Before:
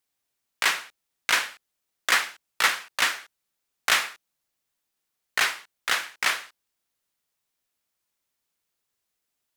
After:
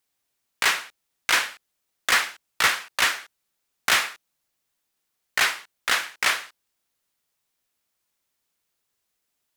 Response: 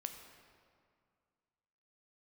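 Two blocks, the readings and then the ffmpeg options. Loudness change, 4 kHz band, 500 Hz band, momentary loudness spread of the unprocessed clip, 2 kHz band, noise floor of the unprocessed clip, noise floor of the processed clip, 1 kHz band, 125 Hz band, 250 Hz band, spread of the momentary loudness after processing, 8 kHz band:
+2.0 dB, +2.0 dB, +2.5 dB, 10 LU, +2.0 dB, -81 dBFS, -78 dBFS, +2.0 dB, no reading, +3.5 dB, 11 LU, +2.0 dB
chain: -af "volume=6.31,asoftclip=hard,volume=0.158,volume=1.41"

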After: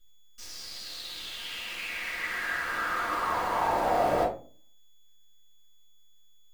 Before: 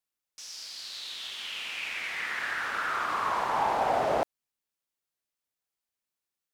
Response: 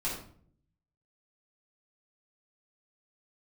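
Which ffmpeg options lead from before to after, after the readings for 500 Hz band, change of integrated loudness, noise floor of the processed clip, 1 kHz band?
+1.5 dB, +0.5 dB, -53 dBFS, 0.0 dB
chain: -filter_complex "[0:a]aeval=exprs='val(0)+0.001*sin(2*PI*3400*n/s)':c=same,acrusher=bits=8:dc=4:mix=0:aa=0.000001[s0];[1:a]atrim=start_sample=2205,asetrate=79380,aresample=44100[s1];[s0][s1]afir=irnorm=-1:irlink=0"

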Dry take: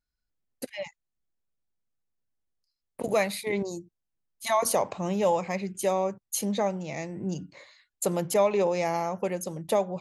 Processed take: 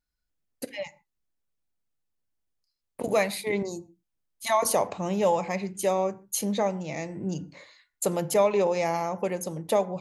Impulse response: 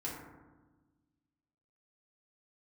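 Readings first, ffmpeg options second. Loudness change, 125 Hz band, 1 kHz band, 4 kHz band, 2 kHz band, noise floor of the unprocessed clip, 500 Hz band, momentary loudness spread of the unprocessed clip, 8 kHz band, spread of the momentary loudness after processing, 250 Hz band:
+1.0 dB, +0.5 dB, +1.0 dB, +1.0 dB, +1.0 dB, -84 dBFS, +1.0 dB, 13 LU, +1.0 dB, 13 LU, +0.5 dB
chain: -filter_complex "[0:a]asplit=2[s0][s1];[1:a]atrim=start_sample=2205,atrim=end_sample=6615[s2];[s1][s2]afir=irnorm=-1:irlink=0,volume=0.2[s3];[s0][s3]amix=inputs=2:normalize=0"

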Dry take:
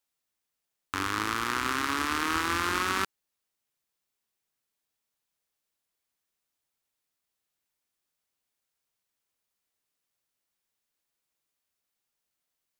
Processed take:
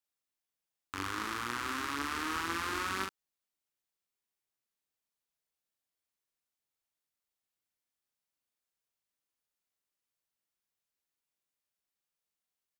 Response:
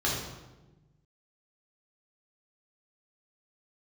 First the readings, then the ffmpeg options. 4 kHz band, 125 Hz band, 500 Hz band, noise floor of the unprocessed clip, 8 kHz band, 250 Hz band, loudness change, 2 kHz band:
-7.0 dB, -7.0 dB, -6.5 dB, -85 dBFS, -7.0 dB, -6.5 dB, -6.5 dB, -7.0 dB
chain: -filter_complex "[0:a]asplit=2[s0][s1];[s1]adelay=42,volume=0.668[s2];[s0][s2]amix=inputs=2:normalize=0,volume=0.376"

